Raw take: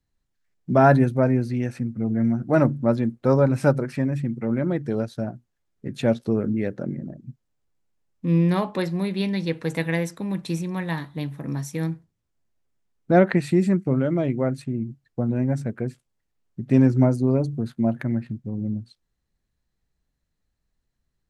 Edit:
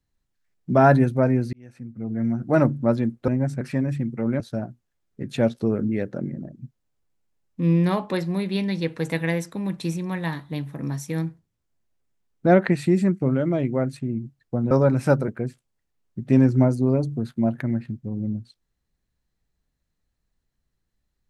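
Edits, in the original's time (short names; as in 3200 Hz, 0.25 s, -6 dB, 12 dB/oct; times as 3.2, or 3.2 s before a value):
1.53–2.51 fade in
3.28–3.85 swap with 15.36–15.69
4.64–5.05 cut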